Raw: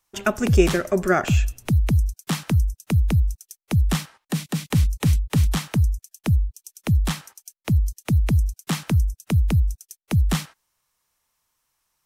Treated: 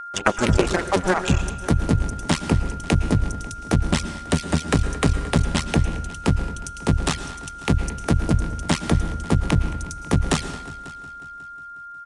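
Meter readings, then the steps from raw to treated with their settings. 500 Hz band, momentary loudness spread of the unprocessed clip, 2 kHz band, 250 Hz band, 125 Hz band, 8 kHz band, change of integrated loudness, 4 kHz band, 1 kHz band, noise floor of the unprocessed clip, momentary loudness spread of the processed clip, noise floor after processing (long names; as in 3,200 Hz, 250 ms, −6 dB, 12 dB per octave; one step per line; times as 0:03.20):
+1.0 dB, 9 LU, +3.5 dB, +2.5 dB, −2.0 dB, +3.0 dB, −0.5 dB, +4.0 dB, +6.0 dB, −83 dBFS, 13 LU, −38 dBFS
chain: sub-harmonics by changed cycles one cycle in 2, muted
reverb reduction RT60 1.3 s
downward compressor 10 to 1, threshold −21 dBFS, peak gain reduction 10 dB
slap from a distant wall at 38 metres, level −17 dB
steady tone 1,400 Hz −36 dBFS
harmonic and percussive parts rebalanced percussive +5 dB
on a send: echo machine with several playback heads 181 ms, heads all three, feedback 41%, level −23.5 dB
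on the sum: dense smooth reverb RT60 0.73 s, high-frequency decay 0.75×, pre-delay 100 ms, DRR 11.5 dB
downsampling to 22,050 Hz
level +3.5 dB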